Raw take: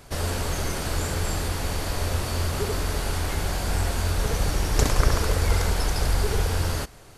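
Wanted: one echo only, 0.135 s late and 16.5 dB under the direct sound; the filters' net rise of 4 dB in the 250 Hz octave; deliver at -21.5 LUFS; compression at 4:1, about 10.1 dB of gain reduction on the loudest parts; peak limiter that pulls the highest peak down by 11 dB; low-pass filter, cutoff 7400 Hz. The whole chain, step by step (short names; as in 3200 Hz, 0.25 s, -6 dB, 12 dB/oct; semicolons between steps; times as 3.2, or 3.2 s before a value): LPF 7400 Hz; bell 250 Hz +5.5 dB; compressor 4:1, threshold -26 dBFS; limiter -23.5 dBFS; echo 0.135 s -16.5 dB; gain +12.5 dB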